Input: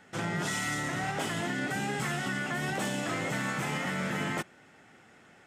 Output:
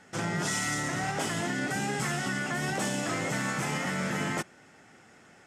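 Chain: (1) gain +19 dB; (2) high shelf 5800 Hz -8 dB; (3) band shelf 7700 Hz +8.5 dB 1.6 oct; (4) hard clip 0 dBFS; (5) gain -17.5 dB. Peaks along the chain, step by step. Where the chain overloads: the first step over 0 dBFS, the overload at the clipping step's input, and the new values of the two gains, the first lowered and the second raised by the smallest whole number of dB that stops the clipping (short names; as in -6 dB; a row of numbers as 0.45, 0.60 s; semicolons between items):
-3.5, -4.0, -2.5, -2.5, -20.0 dBFS; no overload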